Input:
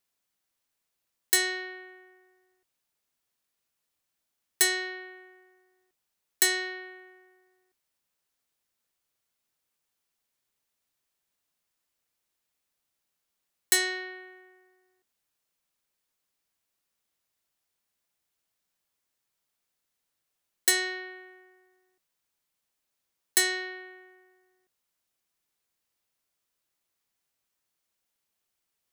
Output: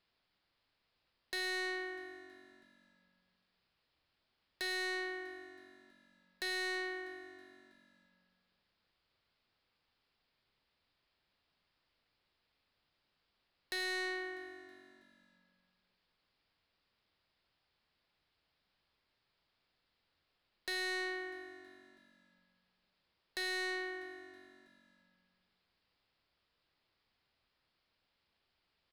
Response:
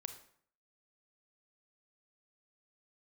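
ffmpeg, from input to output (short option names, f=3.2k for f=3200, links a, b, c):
-filter_complex "[0:a]acompressor=threshold=-32dB:ratio=12,aresample=11025,aresample=44100,asplit=2[a][b];[1:a]atrim=start_sample=2205,lowshelf=f=130:g=10[c];[b][c]afir=irnorm=-1:irlink=0,volume=3.5dB[d];[a][d]amix=inputs=2:normalize=0,asoftclip=type=tanh:threshold=-35dB,asplit=5[e][f][g][h][i];[f]adelay=323,afreqshift=-47,volume=-20dB[j];[g]adelay=646,afreqshift=-94,volume=-25.5dB[k];[h]adelay=969,afreqshift=-141,volume=-31dB[l];[i]adelay=1292,afreqshift=-188,volume=-36.5dB[m];[e][j][k][l][m]amix=inputs=5:normalize=0"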